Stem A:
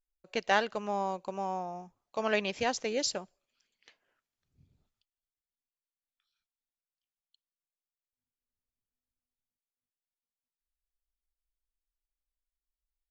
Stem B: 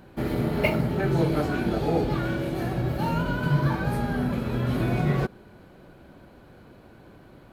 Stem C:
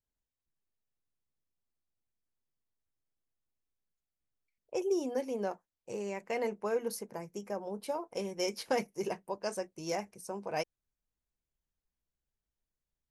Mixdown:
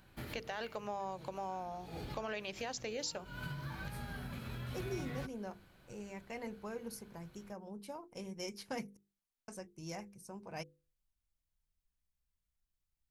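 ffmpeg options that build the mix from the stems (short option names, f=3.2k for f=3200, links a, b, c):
-filter_complex "[0:a]alimiter=limit=-22.5dB:level=0:latency=1:release=16,acompressor=threshold=-38dB:ratio=3,volume=0dB,asplit=2[a][b];[1:a]equalizer=f=430:w=0.37:g=-13.5,acompressor=threshold=-33dB:ratio=6,volume=-3.5dB[c];[2:a]asubboost=boost=6:cutoff=190,volume=-7.5dB,asplit=3[d][e][f];[d]atrim=end=8.97,asetpts=PTS-STARTPTS,afade=t=out:st=8.966:d=0.004:c=hsin[g];[e]atrim=start=8.97:end=9.48,asetpts=PTS-STARTPTS,volume=0[h];[f]atrim=start=9.48,asetpts=PTS-STARTPTS,afade=t=in:d=0.004:c=hsin[i];[g][h][i]concat=n=3:v=0:a=1[j];[b]apad=whole_len=331804[k];[c][k]sidechaincompress=threshold=-55dB:ratio=8:attack=16:release=153[l];[a][l][j]amix=inputs=3:normalize=0,lowshelf=f=380:g=-3,bandreject=f=50:t=h:w=6,bandreject=f=100:t=h:w=6,bandreject=f=150:t=h:w=6,bandreject=f=200:t=h:w=6,bandreject=f=250:t=h:w=6,bandreject=f=300:t=h:w=6,bandreject=f=350:t=h:w=6,bandreject=f=400:t=h:w=6,bandreject=f=450:t=h:w=6,bandreject=f=500:t=h:w=6"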